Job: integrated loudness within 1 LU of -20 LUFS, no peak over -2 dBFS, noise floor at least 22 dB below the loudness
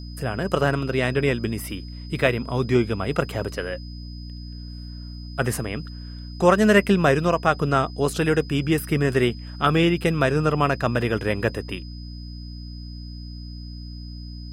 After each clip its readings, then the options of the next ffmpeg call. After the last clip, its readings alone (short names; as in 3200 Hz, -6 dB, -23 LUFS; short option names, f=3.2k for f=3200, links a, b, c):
hum 60 Hz; harmonics up to 300 Hz; hum level -34 dBFS; steady tone 5000 Hz; tone level -45 dBFS; loudness -22.5 LUFS; peak -3.5 dBFS; loudness target -20.0 LUFS
-> -af "bandreject=f=60:t=h:w=6,bandreject=f=120:t=h:w=6,bandreject=f=180:t=h:w=6,bandreject=f=240:t=h:w=6,bandreject=f=300:t=h:w=6"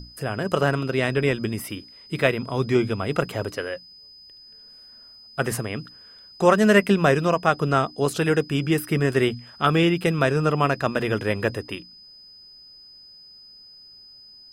hum none; steady tone 5000 Hz; tone level -45 dBFS
-> -af "bandreject=f=5k:w=30"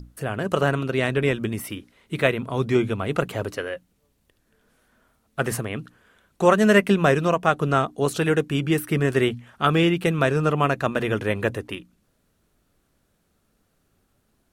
steady tone none; loudness -22.5 LUFS; peak -3.5 dBFS; loudness target -20.0 LUFS
-> -af "volume=2.5dB,alimiter=limit=-2dB:level=0:latency=1"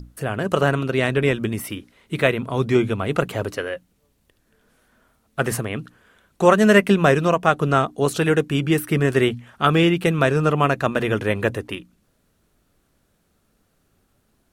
loudness -20.0 LUFS; peak -2.0 dBFS; noise floor -66 dBFS